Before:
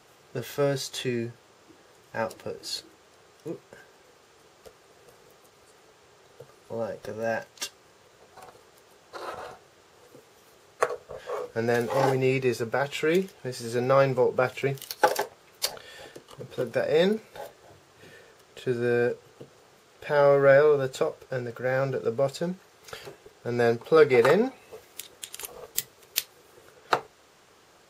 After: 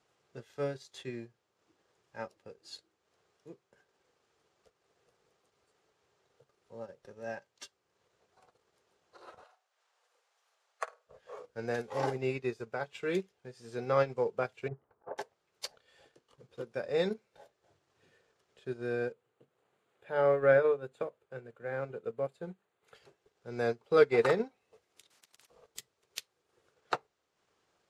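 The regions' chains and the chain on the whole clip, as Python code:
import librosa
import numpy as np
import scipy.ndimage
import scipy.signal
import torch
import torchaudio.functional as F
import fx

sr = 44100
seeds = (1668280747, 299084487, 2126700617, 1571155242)

y = fx.chain(x, sr, fx.highpass(hz=630.0, slope=24),
    fx.room_flutter(wall_m=8.9, rt60_s=0.29), at=(9.44, 11.07))
y = fx.chain(y, sr, fx.lowpass(hz=1200.0, slope=24),
    fx.dynamic_eq(hz=480.0, q=2.1, threshold_db=-37.0, ratio=4.0, max_db=-5),
    fx.over_compress(threshold_db=-30.0, ratio=-0.5), at=(14.68, 15.18))
y = fx.chain(y, sr, fx.highpass(hz=96.0, slope=12),
    fx.peak_eq(hz=5400.0, db=-14.0, octaves=0.65),
    fx.hum_notches(base_hz=50, count=5), at=(19.12, 22.95))
y = fx.chain(y, sr, fx.highpass(hz=1000.0, slope=12),
    fx.level_steps(step_db=21),
    fx.spectral_comp(ratio=10.0), at=(25.1, 25.5))
y = scipy.signal.sosfilt(scipy.signal.butter(2, 8600.0, 'lowpass', fs=sr, output='sos'), y)
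y = fx.transient(y, sr, attack_db=-1, sustain_db=-6)
y = fx.upward_expand(y, sr, threshold_db=-40.0, expansion=1.5)
y = F.gain(torch.from_numpy(y), -4.0).numpy()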